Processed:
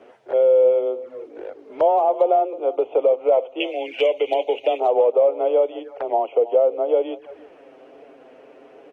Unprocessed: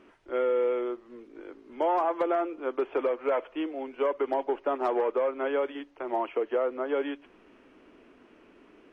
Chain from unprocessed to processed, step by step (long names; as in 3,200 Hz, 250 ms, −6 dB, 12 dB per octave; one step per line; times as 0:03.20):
high-pass filter 50 Hz 24 dB per octave
flat-topped bell 590 Hz +11.5 dB 1.1 octaves
mains-hum notches 50/100/150/200/250 Hz
0:03.60–0:04.80: high shelf with overshoot 1,700 Hz +12.5 dB, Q 3
in parallel at +3 dB: downward compressor 12 to 1, threshold −35 dBFS, peak gain reduction 23 dB
on the sum: slap from a distant wall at 55 metres, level −17 dB
flanger swept by the level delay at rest 11.9 ms, full sweep at −21 dBFS
frequency shifter +18 Hz